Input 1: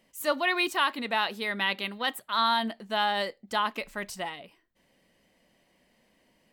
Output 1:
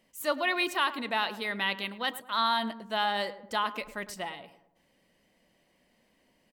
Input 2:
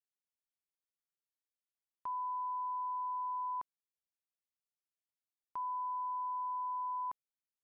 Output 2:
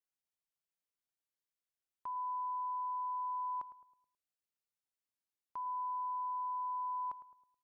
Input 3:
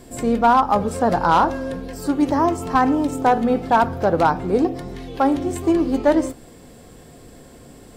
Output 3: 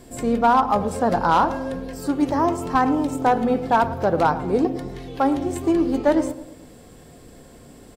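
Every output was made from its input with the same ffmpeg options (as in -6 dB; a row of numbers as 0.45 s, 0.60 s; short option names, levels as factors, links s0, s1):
-filter_complex "[0:a]asplit=2[s0][s1];[s1]adelay=107,lowpass=f=1300:p=1,volume=0.237,asplit=2[s2][s3];[s3]adelay=107,lowpass=f=1300:p=1,volume=0.48,asplit=2[s4][s5];[s5]adelay=107,lowpass=f=1300:p=1,volume=0.48,asplit=2[s6][s7];[s7]adelay=107,lowpass=f=1300:p=1,volume=0.48,asplit=2[s8][s9];[s9]adelay=107,lowpass=f=1300:p=1,volume=0.48[s10];[s0][s2][s4][s6][s8][s10]amix=inputs=6:normalize=0,volume=0.794"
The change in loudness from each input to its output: -2.0 LU, -0.5 LU, -2.0 LU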